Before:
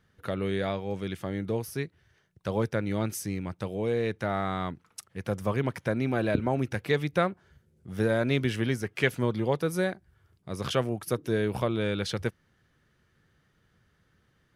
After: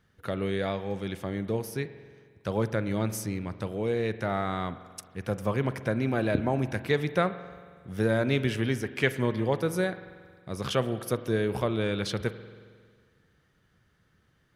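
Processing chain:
spring reverb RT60 1.8 s, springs 45 ms, chirp 25 ms, DRR 12.5 dB

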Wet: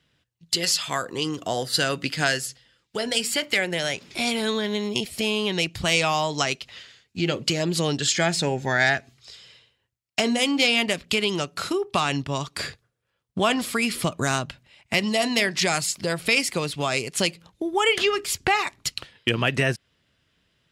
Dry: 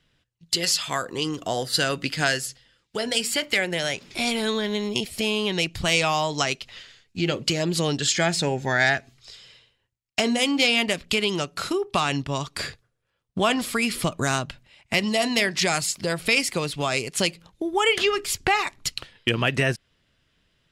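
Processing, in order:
high-pass filter 57 Hz

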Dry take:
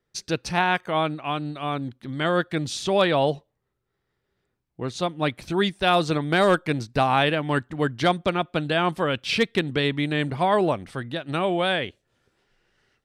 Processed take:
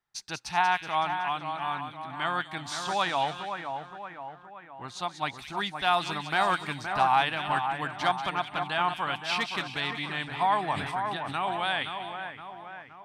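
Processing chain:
low shelf with overshoot 650 Hz −8 dB, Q 3
echo with a time of its own for lows and highs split 2,200 Hz, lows 520 ms, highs 187 ms, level −7 dB
0:10.72–0:11.83: level that may fall only so fast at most 36 dB per second
level −5.5 dB

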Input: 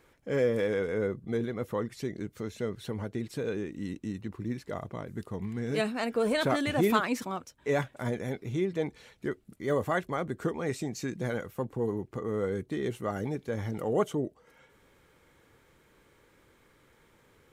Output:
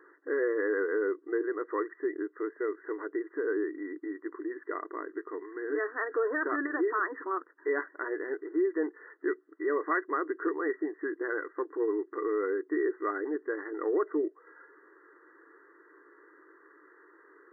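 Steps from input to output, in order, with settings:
flat-topped bell 670 Hz −14.5 dB 1 octave
in parallel at −1 dB: downward compressor, threshold −40 dBFS, peak gain reduction 17.5 dB
on the sum: brickwall limiter −22 dBFS, peak gain reduction 9 dB
linear-phase brick-wall band-pass 290–2,000 Hz
level +4 dB

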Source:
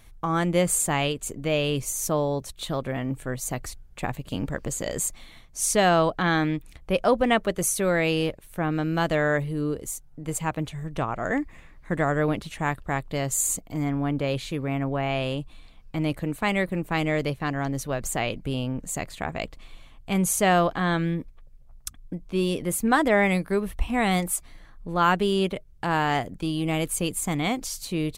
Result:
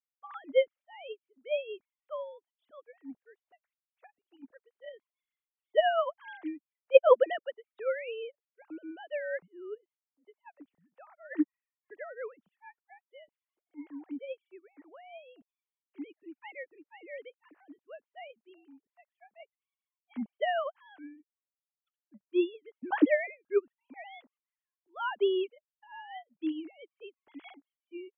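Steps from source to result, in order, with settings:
three sine waves on the formant tracks
expander for the loud parts 2.5 to 1, over −40 dBFS

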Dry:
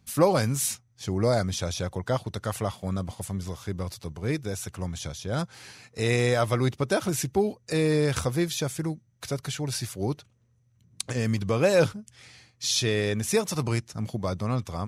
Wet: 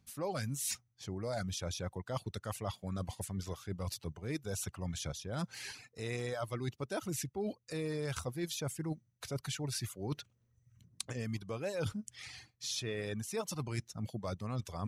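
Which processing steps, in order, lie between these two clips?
reverb reduction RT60 0.75 s
reversed playback
downward compressor 8 to 1, threshold −39 dBFS, peak gain reduction 23 dB
reversed playback
level +3.5 dB

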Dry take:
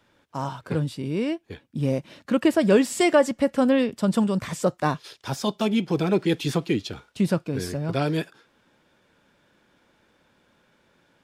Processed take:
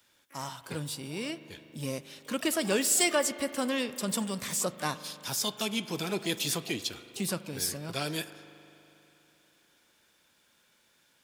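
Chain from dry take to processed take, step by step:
first-order pre-emphasis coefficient 0.9
spring reverb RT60 3.2 s, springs 40 ms, chirp 35 ms, DRR 13.5 dB
pitch-shifted copies added +12 semitones −16 dB
level +7.5 dB

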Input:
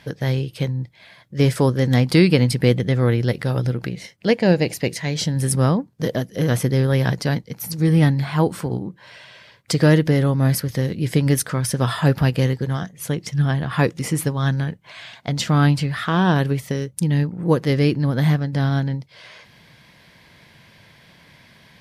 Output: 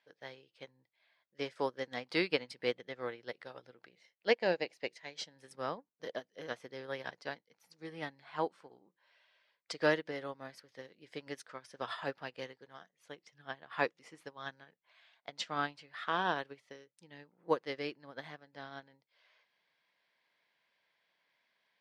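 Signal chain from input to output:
low-pass filter 4,800 Hz 12 dB per octave
in parallel at 0 dB: brickwall limiter −12 dBFS, peak gain reduction 8 dB
on the sum: high-pass filter 530 Hz 12 dB per octave
expander for the loud parts 2.5 to 1, over −29 dBFS
level −9 dB

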